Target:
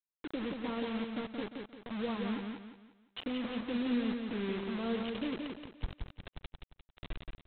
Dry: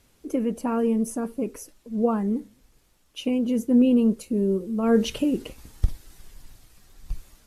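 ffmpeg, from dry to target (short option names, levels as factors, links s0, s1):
-af "acompressor=threshold=0.00447:ratio=2,aresample=8000,acrusher=bits=6:mix=0:aa=0.000001,aresample=44100,aecho=1:1:175|350|525|700|875:0.596|0.214|0.0772|0.0278|0.01"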